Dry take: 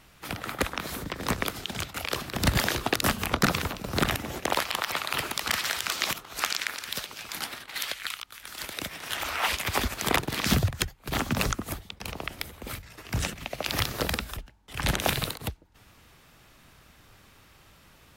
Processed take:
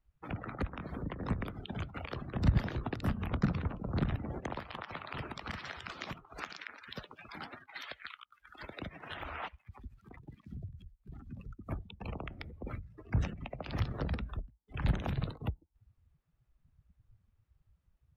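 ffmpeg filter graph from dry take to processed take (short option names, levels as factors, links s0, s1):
-filter_complex "[0:a]asettb=1/sr,asplit=3[s0][s1][s2];[s0]atrim=end=9.484[s3];[s1]atrim=start=9.48:end=11.69,asetpts=PTS-STARTPTS,afade=t=in:d=0.004:c=qsin,afade=t=out:st=2.206:d=0.004:c=qsin,equalizer=f=490:w=0.37:g=-8.5,acompressor=threshold=0.00631:ratio=3:attack=3.2:release=140:knee=1:detection=peak[s4];[s2]atrim=start=11.686[s5];[s3][s4]acrossfade=d=0.004:c1=hsin:c2=qsin[s6];[s6][s5]acrossfade=d=0.004:c1=qsin:c2=hsin,highshelf=f=2300:g=-11.5,afftdn=nr=29:nf=-42,acrossover=split=220[s7][s8];[s8]acompressor=threshold=0.00794:ratio=3[s9];[s7][s9]amix=inputs=2:normalize=0"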